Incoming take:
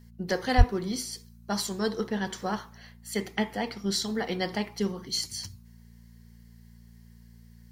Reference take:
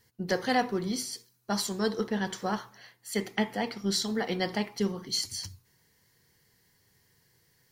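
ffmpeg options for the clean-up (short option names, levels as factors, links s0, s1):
-filter_complex "[0:a]bandreject=f=57.6:t=h:w=4,bandreject=f=115.2:t=h:w=4,bandreject=f=172.8:t=h:w=4,bandreject=f=230.4:t=h:w=4,asplit=3[s0][s1][s2];[s0]afade=t=out:st=0.57:d=0.02[s3];[s1]highpass=f=140:w=0.5412,highpass=f=140:w=1.3066,afade=t=in:st=0.57:d=0.02,afade=t=out:st=0.69:d=0.02[s4];[s2]afade=t=in:st=0.69:d=0.02[s5];[s3][s4][s5]amix=inputs=3:normalize=0"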